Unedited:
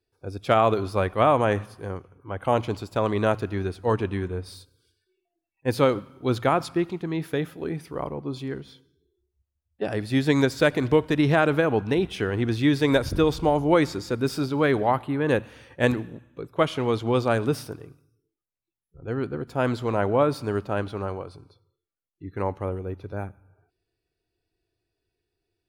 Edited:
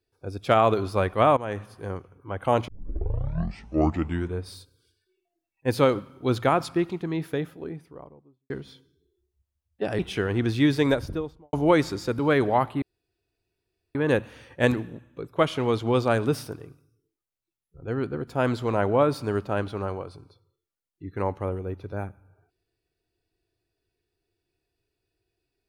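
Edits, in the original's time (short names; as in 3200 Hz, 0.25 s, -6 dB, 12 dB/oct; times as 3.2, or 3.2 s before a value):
1.37–1.89 fade in, from -15.5 dB
2.68 tape start 1.66 s
6.96–8.5 studio fade out
9.99–12.02 cut
12.72–13.56 studio fade out
14.22–14.52 cut
15.15 insert room tone 1.13 s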